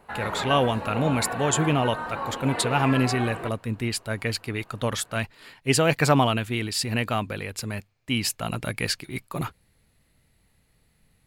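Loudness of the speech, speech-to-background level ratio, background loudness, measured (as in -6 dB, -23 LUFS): -26.0 LUFS, 6.0 dB, -32.0 LUFS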